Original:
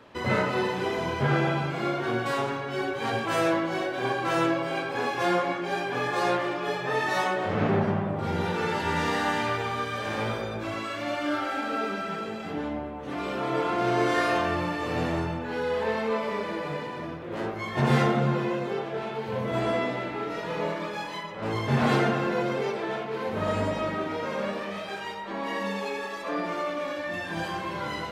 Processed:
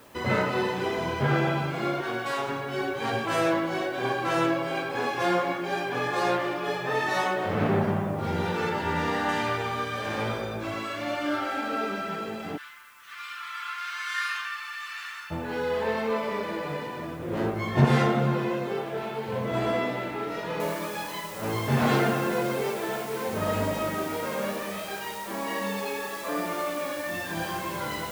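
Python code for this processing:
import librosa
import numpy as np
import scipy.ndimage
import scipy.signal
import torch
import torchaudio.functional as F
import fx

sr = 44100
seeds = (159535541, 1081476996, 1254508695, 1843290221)

y = fx.low_shelf(x, sr, hz=320.0, db=-10.0, at=(2.01, 2.49))
y = fx.high_shelf(y, sr, hz=3500.0, db=-7.0, at=(8.69, 9.29))
y = fx.steep_highpass(y, sr, hz=1200.0, slope=48, at=(12.56, 15.3), fade=0.02)
y = fx.low_shelf(y, sr, hz=390.0, db=8.0, at=(17.19, 17.85))
y = fx.noise_floor_step(y, sr, seeds[0], at_s=20.6, before_db=-60, after_db=-44, tilt_db=0.0)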